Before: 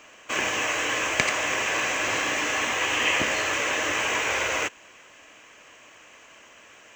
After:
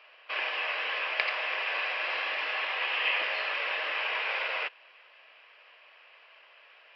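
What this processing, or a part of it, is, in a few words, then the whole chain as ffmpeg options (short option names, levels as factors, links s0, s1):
musical greeting card: -af "aresample=11025,aresample=44100,highpass=f=510:w=0.5412,highpass=f=510:w=1.3066,equalizer=f=2600:t=o:w=0.35:g=4,volume=0.473"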